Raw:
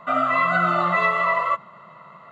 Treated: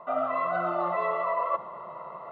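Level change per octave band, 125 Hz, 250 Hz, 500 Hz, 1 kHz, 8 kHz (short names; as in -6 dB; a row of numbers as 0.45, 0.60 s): -14.0 dB, -9.0 dB, -2.0 dB, -7.5 dB, n/a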